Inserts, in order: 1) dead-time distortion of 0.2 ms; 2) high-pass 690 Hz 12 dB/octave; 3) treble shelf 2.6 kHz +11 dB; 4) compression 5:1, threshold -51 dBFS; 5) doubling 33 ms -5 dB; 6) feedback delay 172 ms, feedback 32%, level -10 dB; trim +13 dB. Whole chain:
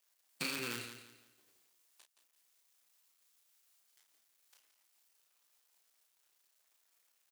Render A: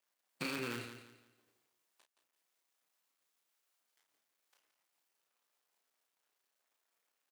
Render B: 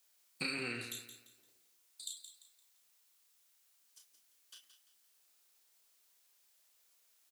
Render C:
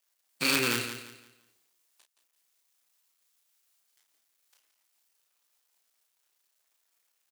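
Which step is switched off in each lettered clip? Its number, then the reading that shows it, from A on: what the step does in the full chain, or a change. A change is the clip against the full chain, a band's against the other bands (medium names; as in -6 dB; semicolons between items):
3, 8 kHz band -9.0 dB; 1, distortion -24 dB; 4, mean gain reduction 10.5 dB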